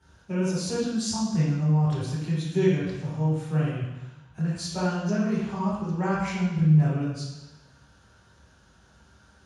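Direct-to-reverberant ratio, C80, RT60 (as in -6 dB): -10.0 dB, 2.5 dB, 1.1 s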